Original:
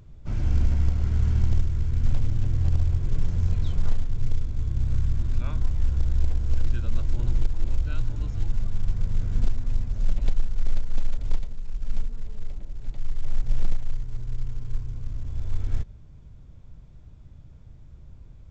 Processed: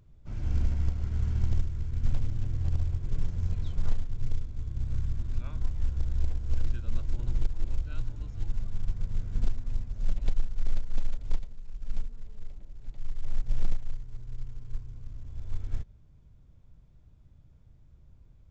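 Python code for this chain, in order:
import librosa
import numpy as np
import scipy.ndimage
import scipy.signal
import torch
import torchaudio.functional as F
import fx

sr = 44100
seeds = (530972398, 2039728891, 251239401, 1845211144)

y = fx.upward_expand(x, sr, threshold_db=-26.0, expansion=1.5)
y = y * 10.0 ** (-3.0 / 20.0)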